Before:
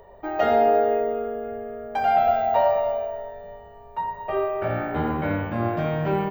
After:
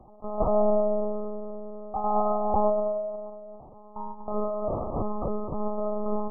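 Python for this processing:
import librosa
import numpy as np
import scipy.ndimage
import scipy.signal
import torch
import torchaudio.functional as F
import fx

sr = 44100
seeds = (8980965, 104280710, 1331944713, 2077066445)

y = fx.lpc_monotone(x, sr, seeds[0], pitch_hz=210.0, order=8)
y = fx.brickwall_lowpass(y, sr, high_hz=1300.0)
y = y * 10.0 ** (-3.0 / 20.0)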